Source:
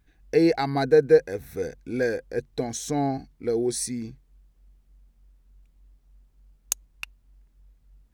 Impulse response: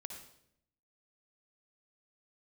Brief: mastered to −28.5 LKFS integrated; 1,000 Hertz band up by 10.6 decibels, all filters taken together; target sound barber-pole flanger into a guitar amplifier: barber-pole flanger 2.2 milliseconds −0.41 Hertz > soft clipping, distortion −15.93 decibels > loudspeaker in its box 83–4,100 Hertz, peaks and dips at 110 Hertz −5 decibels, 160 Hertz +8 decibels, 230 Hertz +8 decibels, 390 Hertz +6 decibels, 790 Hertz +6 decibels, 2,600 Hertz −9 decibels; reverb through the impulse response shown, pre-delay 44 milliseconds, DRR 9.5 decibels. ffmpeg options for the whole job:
-filter_complex "[0:a]equalizer=frequency=1000:width_type=o:gain=8.5,asplit=2[link_01][link_02];[1:a]atrim=start_sample=2205,adelay=44[link_03];[link_02][link_03]afir=irnorm=-1:irlink=0,volume=-6dB[link_04];[link_01][link_04]amix=inputs=2:normalize=0,asplit=2[link_05][link_06];[link_06]adelay=2.2,afreqshift=-0.41[link_07];[link_05][link_07]amix=inputs=2:normalize=1,asoftclip=threshold=-17dB,highpass=83,equalizer=frequency=110:width_type=q:width=4:gain=-5,equalizer=frequency=160:width_type=q:width=4:gain=8,equalizer=frequency=230:width_type=q:width=4:gain=8,equalizer=frequency=390:width_type=q:width=4:gain=6,equalizer=frequency=790:width_type=q:width=4:gain=6,equalizer=frequency=2600:width_type=q:width=4:gain=-9,lowpass=frequency=4100:width=0.5412,lowpass=frequency=4100:width=1.3066,volume=-2.5dB"

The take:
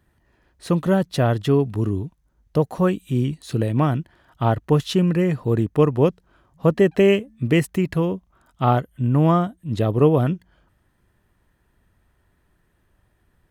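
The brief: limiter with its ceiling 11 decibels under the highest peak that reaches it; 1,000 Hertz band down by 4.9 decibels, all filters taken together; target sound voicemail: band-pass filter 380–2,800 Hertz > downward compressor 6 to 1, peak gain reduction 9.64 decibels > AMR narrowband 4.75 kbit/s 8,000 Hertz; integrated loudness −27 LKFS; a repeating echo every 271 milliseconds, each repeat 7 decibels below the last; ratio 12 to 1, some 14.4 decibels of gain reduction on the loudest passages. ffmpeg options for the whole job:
ffmpeg -i in.wav -af "equalizer=frequency=1000:width_type=o:gain=-6.5,acompressor=threshold=-26dB:ratio=12,alimiter=level_in=4.5dB:limit=-24dB:level=0:latency=1,volume=-4.5dB,highpass=380,lowpass=2800,aecho=1:1:271|542|813|1084|1355:0.447|0.201|0.0905|0.0407|0.0183,acompressor=threshold=-44dB:ratio=6,volume=24dB" -ar 8000 -c:a libopencore_amrnb -b:a 4750 out.amr

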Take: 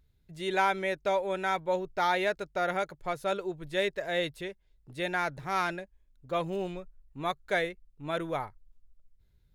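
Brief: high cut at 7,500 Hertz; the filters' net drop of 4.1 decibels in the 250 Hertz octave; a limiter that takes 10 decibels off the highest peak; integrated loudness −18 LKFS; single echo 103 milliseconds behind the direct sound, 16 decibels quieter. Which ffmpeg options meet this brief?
ffmpeg -i in.wav -af "lowpass=7500,equalizer=frequency=250:width_type=o:gain=-8,alimiter=limit=-23.5dB:level=0:latency=1,aecho=1:1:103:0.158,volume=17.5dB" out.wav

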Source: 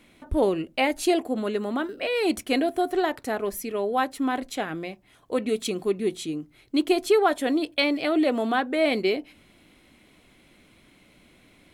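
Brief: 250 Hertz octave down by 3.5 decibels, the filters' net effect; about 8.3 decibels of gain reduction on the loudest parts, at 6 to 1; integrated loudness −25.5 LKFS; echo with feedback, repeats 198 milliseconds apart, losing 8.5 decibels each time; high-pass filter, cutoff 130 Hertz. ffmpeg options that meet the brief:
ffmpeg -i in.wav -af "highpass=130,equalizer=frequency=250:width_type=o:gain=-4.5,acompressor=threshold=-25dB:ratio=6,aecho=1:1:198|396|594|792:0.376|0.143|0.0543|0.0206,volume=5dB" out.wav

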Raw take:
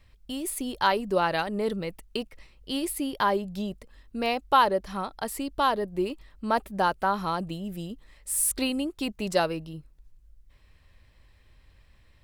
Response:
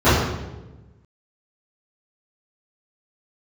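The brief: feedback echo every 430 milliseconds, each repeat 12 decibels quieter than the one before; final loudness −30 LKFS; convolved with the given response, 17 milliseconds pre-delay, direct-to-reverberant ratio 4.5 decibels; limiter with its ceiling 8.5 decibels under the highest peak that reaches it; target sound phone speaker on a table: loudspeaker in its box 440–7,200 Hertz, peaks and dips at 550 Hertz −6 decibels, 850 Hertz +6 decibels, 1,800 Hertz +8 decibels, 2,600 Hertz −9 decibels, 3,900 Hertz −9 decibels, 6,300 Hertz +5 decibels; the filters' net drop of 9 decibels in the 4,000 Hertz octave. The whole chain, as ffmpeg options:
-filter_complex "[0:a]equalizer=frequency=4000:width_type=o:gain=-5,alimiter=limit=-17dB:level=0:latency=1,aecho=1:1:430|860|1290:0.251|0.0628|0.0157,asplit=2[link_01][link_02];[1:a]atrim=start_sample=2205,adelay=17[link_03];[link_02][link_03]afir=irnorm=-1:irlink=0,volume=-30.5dB[link_04];[link_01][link_04]amix=inputs=2:normalize=0,highpass=frequency=440:width=0.5412,highpass=frequency=440:width=1.3066,equalizer=frequency=550:width_type=q:width=4:gain=-6,equalizer=frequency=850:width_type=q:width=4:gain=6,equalizer=frequency=1800:width_type=q:width=4:gain=8,equalizer=frequency=2600:width_type=q:width=4:gain=-9,equalizer=frequency=3900:width_type=q:width=4:gain=-9,equalizer=frequency=6300:width_type=q:width=4:gain=5,lowpass=frequency=7200:width=0.5412,lowpass=frequency=7200:width=1.3066,volume=-1dB"

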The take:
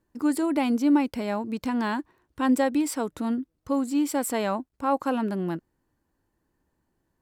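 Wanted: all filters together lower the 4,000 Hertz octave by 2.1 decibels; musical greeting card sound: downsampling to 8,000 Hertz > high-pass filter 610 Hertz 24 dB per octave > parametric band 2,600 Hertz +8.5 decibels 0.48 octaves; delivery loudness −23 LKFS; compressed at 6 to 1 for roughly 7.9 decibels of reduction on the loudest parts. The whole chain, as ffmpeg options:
ffmpeg -i in.wav -af "equalizer=frequency=4000:width_type=o:gain=-8.5,acompressor=threshold=-25dB:ratio=6,aresample=8000,aresample=44100,highpass=frequency=610:width=0.5412,highpass=frequency=610:width=1.3066,equalizer=frequency=2600:width_type=o:width=0.48:gain=8.5,volume=14.5dB" out.wav

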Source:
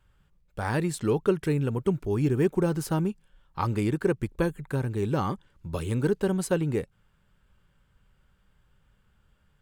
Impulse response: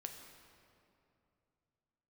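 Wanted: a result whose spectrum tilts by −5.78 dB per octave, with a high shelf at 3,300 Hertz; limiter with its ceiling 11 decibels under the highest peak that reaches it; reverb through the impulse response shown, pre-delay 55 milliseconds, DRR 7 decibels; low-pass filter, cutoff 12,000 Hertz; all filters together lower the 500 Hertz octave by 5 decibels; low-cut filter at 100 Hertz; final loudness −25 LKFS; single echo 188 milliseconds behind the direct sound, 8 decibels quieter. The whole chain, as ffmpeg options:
-filter_complex "[0:a]highpass=100,lowpass=12000,equalizer=frequency=500:width_type=o:gain=-7,highshelf=frequency=3300:gain=7,alimiter=level_in=0.5dB:limit=-24dB:level=0:latency=1,volume=-0.5dB,aecho=1:1:188:0.398,asplit=2[link_01][link_02];[1:a]atrim=start_sample=2205,adelay=55[link_03];[link_02][link_03]afir=irnorm=-1:irlink=0,volume=-3.5dB[link_04];[link_01][link_04]amix=inputs=2:normalize=0,volume=8dB"

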